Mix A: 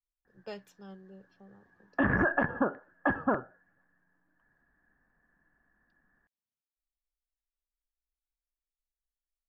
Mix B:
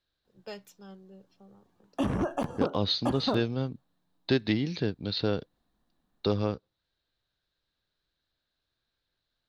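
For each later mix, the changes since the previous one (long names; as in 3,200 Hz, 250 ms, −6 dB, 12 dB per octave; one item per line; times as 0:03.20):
second voice: unmuted
background: remove low-pass with resonance 1,700 Hz, resonance Q 15
master: add high-shelf EQ 5,000 Hz +10.5 dB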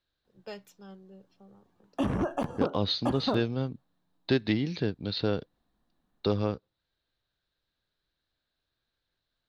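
master: add bass and treble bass 0 dB, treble −3 dB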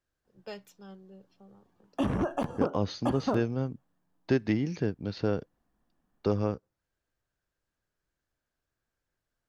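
second voice: remove low-pass with resonance 3,900 Hz, resonance Q 7.3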